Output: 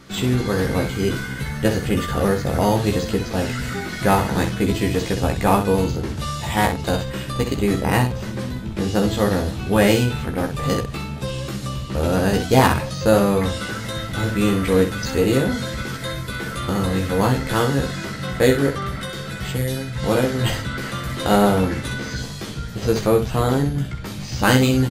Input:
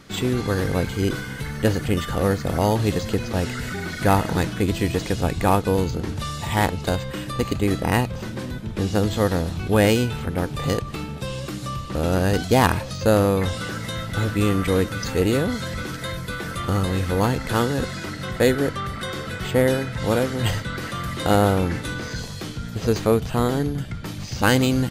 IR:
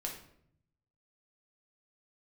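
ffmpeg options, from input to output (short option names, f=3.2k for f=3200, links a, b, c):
-filter_complex "[0:a]asettb=1/sr,asplit=3[a][b][c];[a]atrim=end=19.004[d];[b]atrim=start=19:end=20.03,asetpts=PTS-STARTPTS,afade=t=in:d=0.004:c=qsin,afade=t=out:st=1.026:d=0.004:c=qsin,acrossover=split=160|3000[e][f][g];[f]acompressor=threshold=-33dB:ratio=3[h];[e][h][g]amix=inputs=3:normalize=0[i];[c]atrim=start=20.026[j];[d][i]acrossfade=d=0.004:c1=hsin:c2=qsin[k];[k][j]acrossfade=d=0.004:c1=qsin:c2=hsin,aecho=1:1:15|64:0.708|0.447"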